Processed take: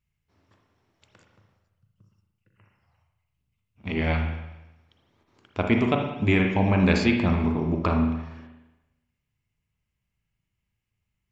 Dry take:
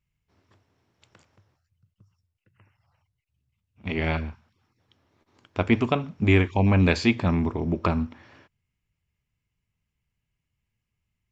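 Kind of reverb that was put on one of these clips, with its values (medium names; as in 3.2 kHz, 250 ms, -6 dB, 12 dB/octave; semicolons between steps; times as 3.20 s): spring tank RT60 1 s, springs 37/58 ms, chirp 45 ms, DRR 2.5 dB; trim -1.5 dB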